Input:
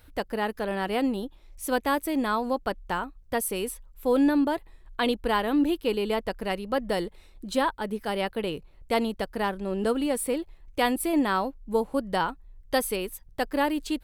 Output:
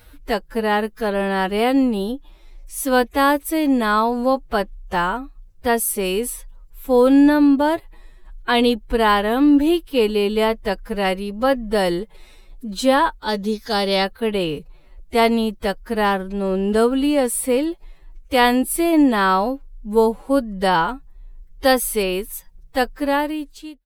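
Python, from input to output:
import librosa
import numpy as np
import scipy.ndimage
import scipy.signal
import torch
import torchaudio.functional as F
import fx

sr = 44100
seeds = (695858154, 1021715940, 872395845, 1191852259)

y = fx.fade_out_tail(x, sr, length_s=0.63)
y = fx.spec_box(y, sr, start_s=7.79, length_s=0.47, low_hz=3300.0, high_hz=7300.0, gain_db=12)
y = fx.stretch_vocoder(y, sr, factor=1.7)
y = y * 10.0 ** (8.5 / 20.0)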